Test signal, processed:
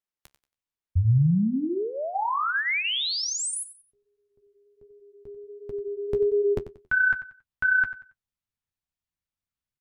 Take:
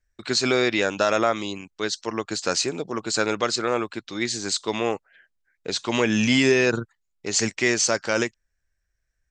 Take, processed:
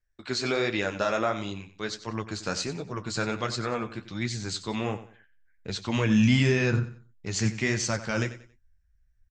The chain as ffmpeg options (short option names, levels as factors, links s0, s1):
-af "asubboost=boost=7:cutoff=150,flanger=delay=8.6:depth=7.1:regen=-38:speed=1.4:shape=triangular,highshelf=f=5300:g=-7.5,aecho=1:1:92|184|276:0.2|0.0579|0.0168,volume=0.891"